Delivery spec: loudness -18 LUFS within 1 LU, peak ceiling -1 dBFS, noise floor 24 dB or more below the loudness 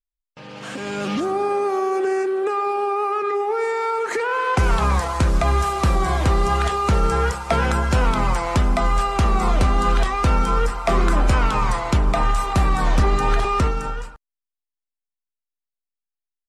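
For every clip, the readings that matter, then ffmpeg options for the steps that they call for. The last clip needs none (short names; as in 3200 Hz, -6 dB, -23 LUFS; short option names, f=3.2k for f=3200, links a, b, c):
loudness -20.5 LUFS; peak -8.5 dBFS; loudness target -18.0 LUFS
-> -af "volume=2.5dB"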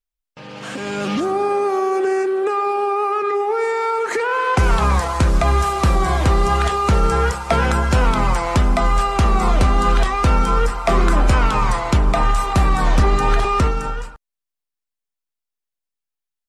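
loudness -18.0 LUFS; peak -6.0 dBFS; noise floor -84 dBFS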